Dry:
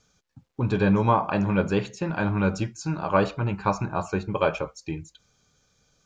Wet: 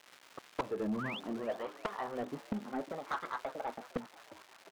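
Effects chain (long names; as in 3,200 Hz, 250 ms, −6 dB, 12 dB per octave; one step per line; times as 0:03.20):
gliding playback speed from 96% → 161%
low-pass that shuts in the quiet parts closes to 350 Hz, open at −19 dBFS
low-shelf EQ 120 Hz +9.5 dB
dead-zone distortion −39 dBFS
LFO wah 0.69 Hz 200–1,200 Hz, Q 2.3
sound drawn into the spectrogram rise, 0:00.98–0:01.20, 1,100–3,700 Hz −39 dBFS
gate with flip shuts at −31 dBFS, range −30 dB
surface crackle 380 per second −66 dBFS
mid-hump overdrive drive 33 dB, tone 2,500 Hz, clips at −27.5 dBFS
echo with shifted repeats 355 ms, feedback 62%, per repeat +77 Hz, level −18 dB
level +4 dB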